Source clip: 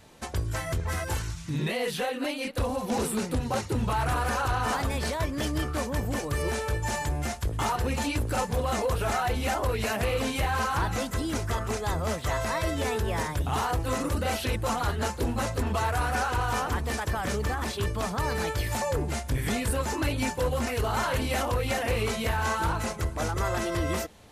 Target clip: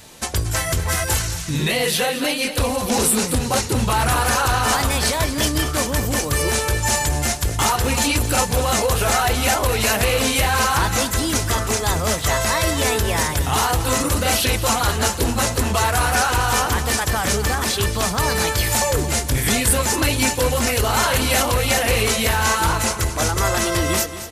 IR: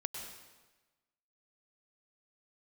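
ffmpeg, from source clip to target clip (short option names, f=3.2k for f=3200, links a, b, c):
-af "highshelf=f=2.9k:g=11,aecho=1:1:228|456|684|912:0.237|0.104|0.0459|0.0202,volume=7dB"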